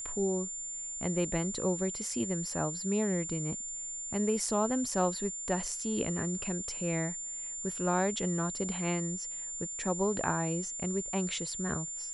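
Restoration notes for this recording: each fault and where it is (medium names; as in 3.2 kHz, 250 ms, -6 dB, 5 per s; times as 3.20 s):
whine 7.2 kHz -37 dBFS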